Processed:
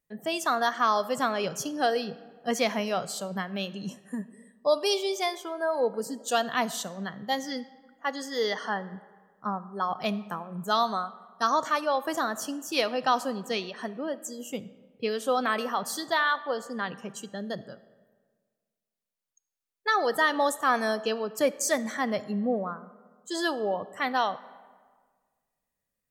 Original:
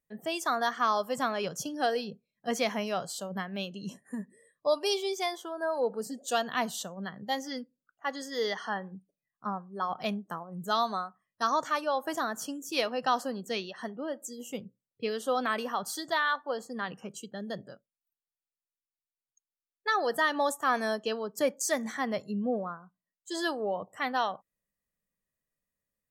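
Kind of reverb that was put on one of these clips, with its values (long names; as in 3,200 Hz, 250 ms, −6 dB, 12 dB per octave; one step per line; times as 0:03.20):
comb and all-pass reverb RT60 1.6 s, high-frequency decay 0.6×, pre-delay 10 ms, DRR 16.5 dB
level +3 dB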